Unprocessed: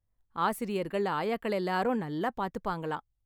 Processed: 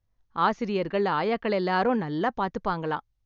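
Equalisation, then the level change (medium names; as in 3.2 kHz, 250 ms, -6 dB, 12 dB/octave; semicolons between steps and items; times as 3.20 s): Chebyshev low-pass 6.6 kHz, order 8; +5.5 dB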